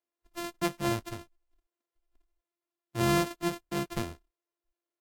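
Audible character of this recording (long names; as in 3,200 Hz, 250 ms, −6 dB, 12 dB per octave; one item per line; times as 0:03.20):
a buzz of ramps at a fixed pitch in blocks of 128 samples
Ogg Vorbis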